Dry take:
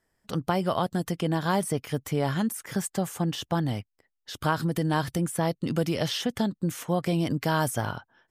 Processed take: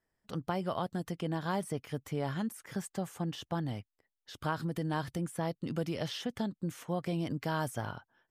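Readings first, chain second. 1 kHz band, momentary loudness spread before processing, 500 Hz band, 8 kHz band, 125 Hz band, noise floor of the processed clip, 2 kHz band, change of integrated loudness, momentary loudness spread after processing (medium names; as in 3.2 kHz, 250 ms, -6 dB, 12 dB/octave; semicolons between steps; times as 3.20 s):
-8.0 dB, 6 LU, -8.0 dB, -12.0 dB, -8.0 dB, under -85 dBFS, -8.5 dB, -8.0 dB, 6 LU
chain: treble shelf 6 kHz -6 dB; trim -8 dB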